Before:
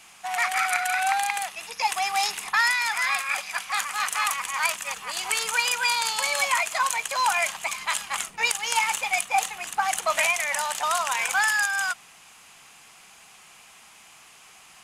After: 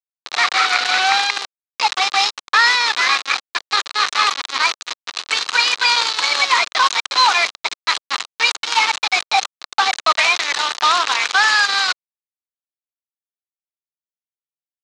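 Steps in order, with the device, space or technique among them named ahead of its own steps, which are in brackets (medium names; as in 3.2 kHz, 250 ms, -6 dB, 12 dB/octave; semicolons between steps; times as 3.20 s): hand-held game console (bit crusher 4-bit; cabinet simulation 440–5800 Hz, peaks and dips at 610 Hz -5 dB, 1.2 kHz +5 dB, 4 kHz +8 dB); trim +6.5 dB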